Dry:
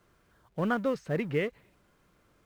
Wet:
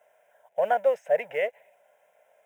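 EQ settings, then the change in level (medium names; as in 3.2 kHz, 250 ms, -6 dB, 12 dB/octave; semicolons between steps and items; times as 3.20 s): resonant high-pass 620 Hz, resonance Q 4.7; static phaser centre 1.2 kHz, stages 6; +3.0 dB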